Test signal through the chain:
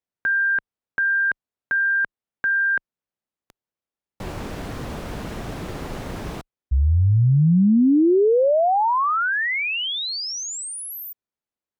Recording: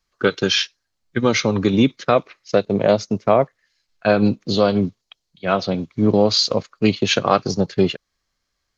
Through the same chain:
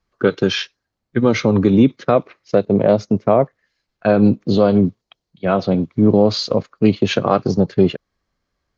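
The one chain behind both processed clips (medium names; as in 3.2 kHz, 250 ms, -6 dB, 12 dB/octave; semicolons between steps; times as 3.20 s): high-pass 310 Hz 6 dB/octave; tilt EQ -4 dB/octave; in parallel at +1 dB: peak limiter -11.5 dBFS; on the sum: trim -3.5 dB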